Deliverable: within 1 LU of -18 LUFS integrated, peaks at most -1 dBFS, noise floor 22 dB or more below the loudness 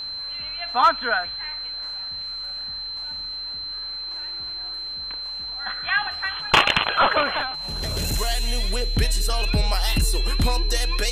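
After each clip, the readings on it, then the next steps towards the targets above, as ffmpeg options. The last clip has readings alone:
steady tone 4100 Hz; tone level -29 dBFS; loudness -23.5 LUFS; peak -7.0 dBFS; loudness target -18.0 LUFS
-> -af "bandreject=f=4.1k:w=30"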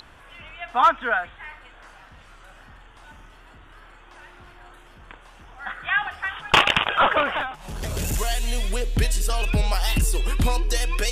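steady tone none; loudness -23.0 LUFS; peak -7.5 dBFS; loudness target -18.0 LUFS
-> -af "volume=5dB"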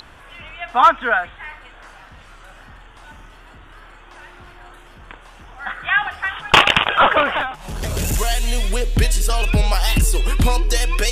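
loudness -18.0 LUFS; peak -2.5 dBFS; noise floor -44 dBFS

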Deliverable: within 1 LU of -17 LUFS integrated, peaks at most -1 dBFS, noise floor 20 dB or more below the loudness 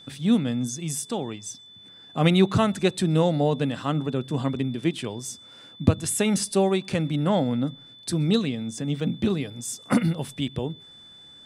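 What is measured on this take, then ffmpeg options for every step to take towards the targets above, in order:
steady tone 3500 Hz; tone level -46 dBFS; loudness -25.0 LUFS; peak -4.5 dBFS; loudness target -17.0 LUFS
-> -af "bandreject=f=3.5k:w=30"
-af "volume=8dB,alimiter=limit=-1dB:level=0:latency=1"

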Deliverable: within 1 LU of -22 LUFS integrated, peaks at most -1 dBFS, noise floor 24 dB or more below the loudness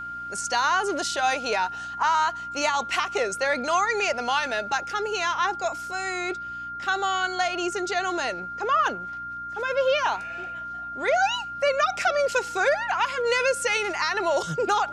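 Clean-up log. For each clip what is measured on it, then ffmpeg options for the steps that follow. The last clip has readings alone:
hum 60 Hz; harmonics up to 300 Hz; hum level -49 dBFS; steady tone 1400 Hz; tone level -32 dBFS; loudness -25.0 LUFS; peak -10.0 dBFS; loudness target -22.0 LUFS
-> -af "bandreject=f=60:t=h:w=4,bandreject=f=120:t=h:w=4,bandreject=f=180:t=h:w=4,bandreject=f=240:t=h:w=4,bandreject=f=300:t=h:w=4"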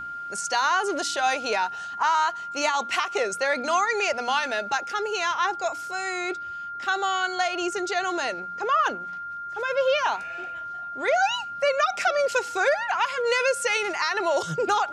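hum none; steady tone 1400 Hz; tone level -32 dBFS
-> -af "bandreject=f=1.4k:w=30"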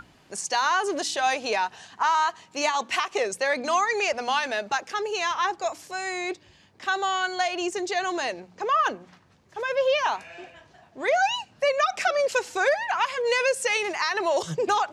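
steady tone none; loudness -25.5 LUFS; peak -10.0 dBFS; loudness target -22.0 LUFS
-> -af "volume=3.5dB"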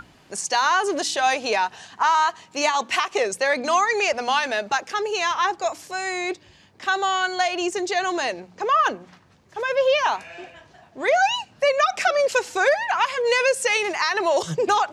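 loudness -22.0 LUFS; peak -6.5 dBFS; noise floor -54 dBFS

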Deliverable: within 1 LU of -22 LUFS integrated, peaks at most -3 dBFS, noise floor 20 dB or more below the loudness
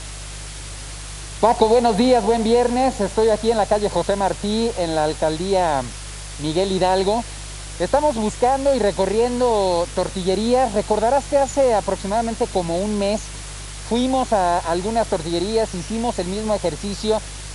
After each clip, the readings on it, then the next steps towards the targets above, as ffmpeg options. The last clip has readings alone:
hum 50 Hz; harmonics up to 150 Hz; hum level -32 dBFS; noise floor -33 dBFS; noise floor target -40 dBFS; loudness -20.0 LUFS; peak -1.0 dBFS; loudness target -22.0 LUFS
-> -af "bandreject=f=50:t=h:w=4,bandreject=f=100:t=h:w=4,bandreject=f=150:t=h:w=4"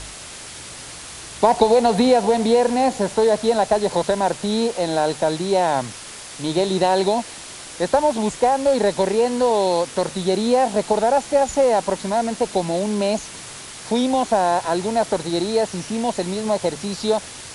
hum none; noise floor -37 dBFS; noise floor target -40 dBFS
-> -af "afftdn=nr=6:nf=-37"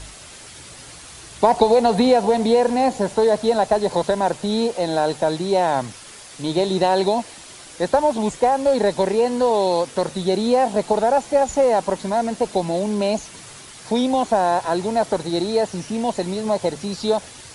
noise floor -41 dBFS; loudness -20.0 LUFS; peak -1.5 dBFS; loudness target -22.0 LUFS
-> -af "volume=-2dB"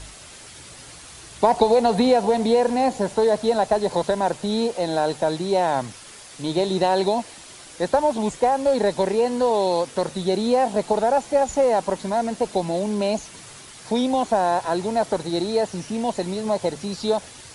loudness -22.0 LUFS; peak -3.5 dBFS; noise floor -43 dBFS

